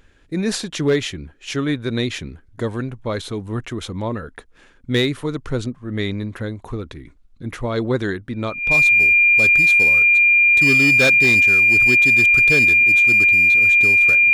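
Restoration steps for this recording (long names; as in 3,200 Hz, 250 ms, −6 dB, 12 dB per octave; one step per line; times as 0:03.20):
clipped peaks rebuilt −10 dBFS
notch filter 2,400 Hz, Q 30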